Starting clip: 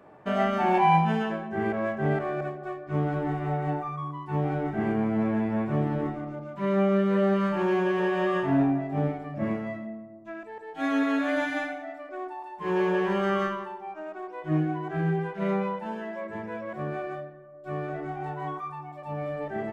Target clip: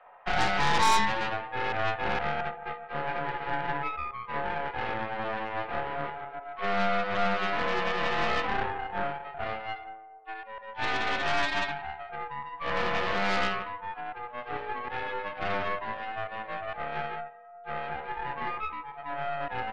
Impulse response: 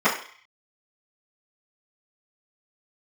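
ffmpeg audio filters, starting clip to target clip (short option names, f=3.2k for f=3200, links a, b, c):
-af "highpass=f=490:t=q:w=0.5412,highpass=f=490:t=q:w=1.307,lowpass=f=3.2k:t=q:w=0.5176,lowpass=f=3.2k:t=q:w=0.7071,lowpass=f=3.2k:t=q:w=1.932,afreqshift=110,aeval=exprs='0.282*(cos(1*acos(clip(val(0)/0.282,-1,1)))-cos(1*PI/2))+0.0708*(cos(8*acos(clip(val(0)/0.282,-1,1)))-cos(8*PI/2))':c=same,asoftclip=type=tanh:threshold=-16.5dB,volume=1dB"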